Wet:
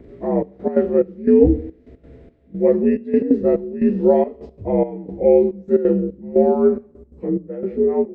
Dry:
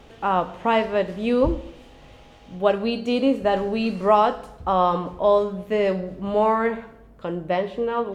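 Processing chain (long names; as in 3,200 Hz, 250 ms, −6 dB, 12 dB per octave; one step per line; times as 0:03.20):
partials spread apart or drawn together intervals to 83%
low shelf with overshoot 610 Hz +14 dB, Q 1.5
gate pattern "xxxxx..x.xxx..." 177 BPM −12 dB
level −6.5 dB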